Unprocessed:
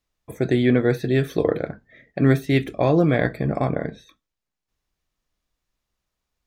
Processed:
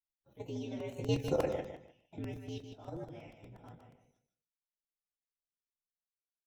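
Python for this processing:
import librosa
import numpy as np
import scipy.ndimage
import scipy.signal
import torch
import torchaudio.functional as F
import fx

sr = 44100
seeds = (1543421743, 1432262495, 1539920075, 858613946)

y = fx.partial_stretch(x, sr, pct=119)
y = fx.doppler_pass(y, sr, speed_mps=16, closest_m=3.7, pass_at_s=1.35)
y = fx.level_steps(y, sr, step_db=12)
y = fx.chorus_voices(y, sr, voices=6, hz=0.43, base_ms=21, depth_ms=3.7, mix_pct=25)
y = fx.echo_feedback(y, sr, ms=154, feedback_pct=22, wet_db=-7.5)
y = fx.buffer_crackle(y, sr, first_s=0.8, period_s=0.12, block=128, kind='repeat')
y = y * 10.0 ** (-2.0 / 20.0)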